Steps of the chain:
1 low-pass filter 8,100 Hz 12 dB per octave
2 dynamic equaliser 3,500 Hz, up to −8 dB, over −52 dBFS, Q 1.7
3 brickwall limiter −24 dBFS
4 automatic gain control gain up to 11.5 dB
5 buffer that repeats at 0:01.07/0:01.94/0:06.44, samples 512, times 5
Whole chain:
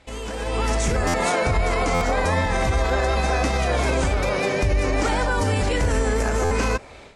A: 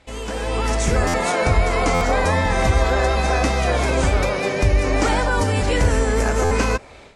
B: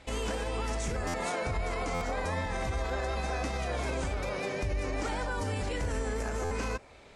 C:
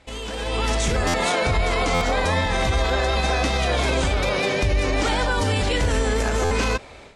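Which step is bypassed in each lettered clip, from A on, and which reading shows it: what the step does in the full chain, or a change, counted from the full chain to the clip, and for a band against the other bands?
3, average gain reduction 2.5 dB
4, change in momentary loudness spread −1 LU
2, 4 kHz band +6.0 dB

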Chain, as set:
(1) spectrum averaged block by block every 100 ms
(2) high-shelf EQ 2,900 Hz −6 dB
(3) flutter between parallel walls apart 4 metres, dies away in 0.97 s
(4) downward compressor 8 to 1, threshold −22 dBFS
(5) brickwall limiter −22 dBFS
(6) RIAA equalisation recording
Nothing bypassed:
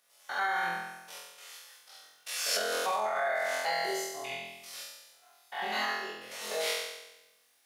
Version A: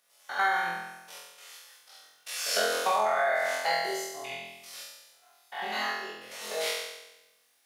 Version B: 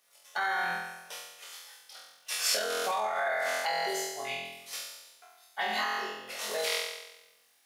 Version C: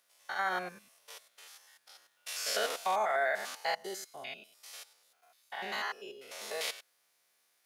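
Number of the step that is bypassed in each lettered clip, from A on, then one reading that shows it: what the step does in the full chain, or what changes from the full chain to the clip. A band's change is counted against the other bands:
5, change in momentary loudness spread +3 LU
1, 8 kHz band +1.5 dB
3, change in integrated loudness −2.5 LU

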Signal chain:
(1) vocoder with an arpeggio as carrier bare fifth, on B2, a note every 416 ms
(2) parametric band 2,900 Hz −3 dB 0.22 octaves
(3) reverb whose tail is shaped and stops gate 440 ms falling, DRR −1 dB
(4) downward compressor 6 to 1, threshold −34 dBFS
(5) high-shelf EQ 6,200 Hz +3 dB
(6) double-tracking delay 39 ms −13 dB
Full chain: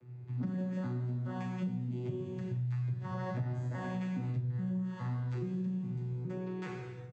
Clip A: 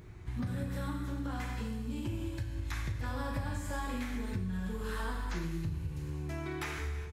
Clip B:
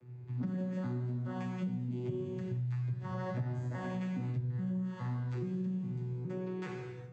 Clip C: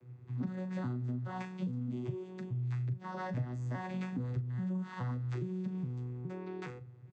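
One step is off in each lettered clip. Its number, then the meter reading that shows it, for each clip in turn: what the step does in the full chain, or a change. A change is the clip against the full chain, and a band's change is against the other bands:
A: 1, 2 kHz band +9.0 dB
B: 6, 500 Hz band +2.0 dB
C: 3, change in momentary loudness spread +2 LU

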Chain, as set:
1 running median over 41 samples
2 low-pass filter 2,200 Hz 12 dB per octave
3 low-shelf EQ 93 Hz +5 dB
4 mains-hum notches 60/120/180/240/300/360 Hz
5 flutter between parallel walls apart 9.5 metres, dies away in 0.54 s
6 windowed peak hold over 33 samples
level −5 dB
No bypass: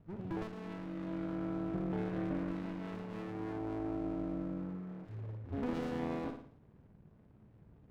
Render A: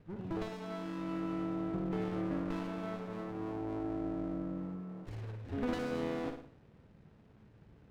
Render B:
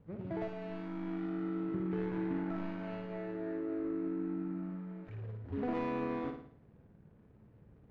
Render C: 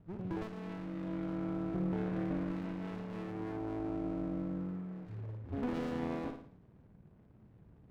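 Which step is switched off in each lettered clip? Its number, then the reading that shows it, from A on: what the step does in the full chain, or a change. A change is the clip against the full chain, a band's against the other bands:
1, 125 Hz band −2.0 dB
6, distortion level −4 dB
4, 125 Hz band +1.5 dB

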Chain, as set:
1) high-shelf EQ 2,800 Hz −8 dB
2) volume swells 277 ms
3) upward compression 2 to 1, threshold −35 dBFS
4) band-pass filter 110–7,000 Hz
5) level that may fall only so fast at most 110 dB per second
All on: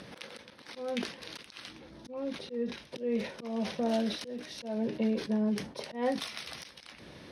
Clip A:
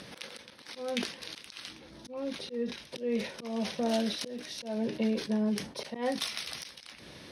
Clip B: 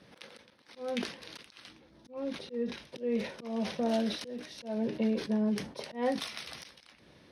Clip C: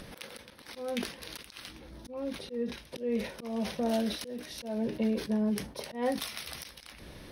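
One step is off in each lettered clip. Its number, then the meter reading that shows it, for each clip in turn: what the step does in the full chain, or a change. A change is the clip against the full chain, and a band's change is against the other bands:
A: 1, 8 kHz band +5.5 dB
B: 3, change in momentary loudness spread +3 LU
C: 4, 8 kHz band +4.0 dB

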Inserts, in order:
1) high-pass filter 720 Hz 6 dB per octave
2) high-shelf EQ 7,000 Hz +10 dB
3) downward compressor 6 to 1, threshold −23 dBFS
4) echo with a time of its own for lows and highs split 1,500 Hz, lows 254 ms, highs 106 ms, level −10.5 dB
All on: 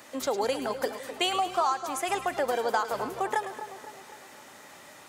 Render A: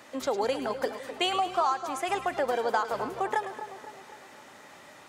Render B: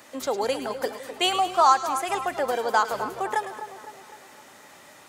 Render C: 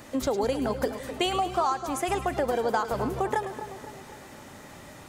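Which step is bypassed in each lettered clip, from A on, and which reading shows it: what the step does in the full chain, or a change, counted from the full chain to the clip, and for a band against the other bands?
2, 8 kHz band −5.5 dB
3, change in crest factor +2.0 dB
1, 125 Hz band +14.0 dB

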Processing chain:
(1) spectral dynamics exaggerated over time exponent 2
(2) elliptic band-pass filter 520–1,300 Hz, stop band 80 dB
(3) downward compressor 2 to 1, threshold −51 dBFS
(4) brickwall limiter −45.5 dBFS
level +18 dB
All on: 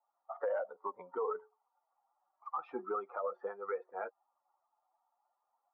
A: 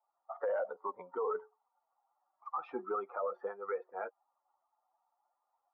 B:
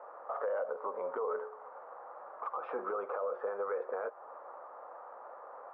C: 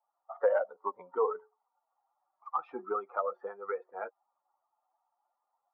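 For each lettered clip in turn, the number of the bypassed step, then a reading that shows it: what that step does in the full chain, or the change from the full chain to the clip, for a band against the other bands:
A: 3, average gain reduction 4.5 dB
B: 1, 250 Hz band −4.0 dB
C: 4, average gain reduction 1.5 dB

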